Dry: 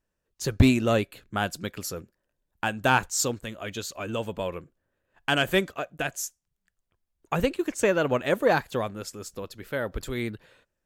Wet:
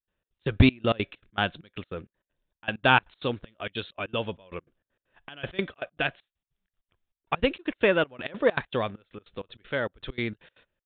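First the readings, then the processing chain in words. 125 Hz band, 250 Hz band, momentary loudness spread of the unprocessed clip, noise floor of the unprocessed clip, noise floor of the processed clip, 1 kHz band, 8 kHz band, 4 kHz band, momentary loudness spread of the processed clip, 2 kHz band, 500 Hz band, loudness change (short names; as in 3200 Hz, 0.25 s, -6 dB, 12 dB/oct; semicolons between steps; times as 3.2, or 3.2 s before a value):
-1.0 dB, -2.0 dB, 13 LU, -82 dBFS, under -85 dBFS, -1.0 dB, under -40 dB, 0.0 dB, 20 LU, +0.5 dB, -1.5 dB, -0.5 dB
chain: step gate ".xx.x.xxx..x" 196 bpm -24 dB; high shelf 3100 Hz +11.5 dB; downsampling 8000 Hz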